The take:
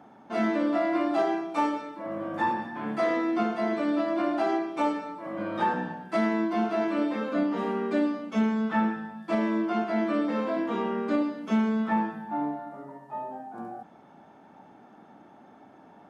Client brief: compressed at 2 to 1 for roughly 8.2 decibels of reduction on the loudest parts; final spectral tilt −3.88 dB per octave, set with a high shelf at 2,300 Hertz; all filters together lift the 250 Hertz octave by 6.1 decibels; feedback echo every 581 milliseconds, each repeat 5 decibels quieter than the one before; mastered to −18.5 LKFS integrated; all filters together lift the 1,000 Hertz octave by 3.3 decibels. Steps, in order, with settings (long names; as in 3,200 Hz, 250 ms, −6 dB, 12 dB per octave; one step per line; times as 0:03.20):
parametric band 250 Hz +7.5 dB
parametric band 1,000 Hz +5 dB
high-shelf EQ 2,300 Hz −7.5 dB
downward compressor 2 to 1, threshold −30 dBFS
repeating echo 581 ms, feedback 56%, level −5 dB
level +10 dB